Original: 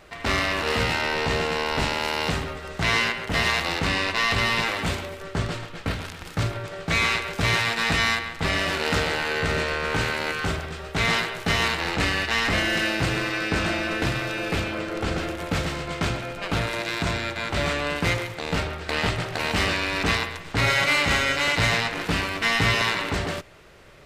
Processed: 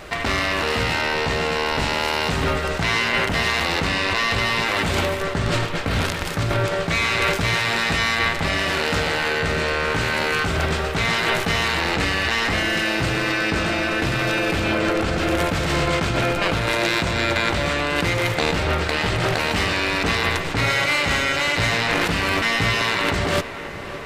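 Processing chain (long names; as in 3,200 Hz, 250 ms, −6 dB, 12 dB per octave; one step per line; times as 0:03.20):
in parallel at +3 dB: compressor whose output falls as the input rises −31 dBFS, ratio −0.5
on the sum: tape delay 567 ms, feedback 90%, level −14 dB, low-pass 2,700 Hz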